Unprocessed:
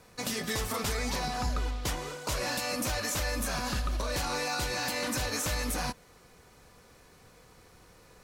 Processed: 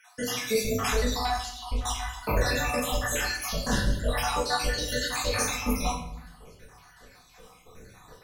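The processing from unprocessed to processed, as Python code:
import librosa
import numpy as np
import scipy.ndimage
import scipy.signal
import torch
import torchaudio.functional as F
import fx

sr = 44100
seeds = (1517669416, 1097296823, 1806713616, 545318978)

y = fx.spec_dropout(x, sr, seeds[0], share_pct=71)
y = fx.room_shoebox(y, sr, seeds[1], volume_m3=160.0, walls='mixed', distance_m=1.5)
y = y * librosa.db_to_amplitude(4.0)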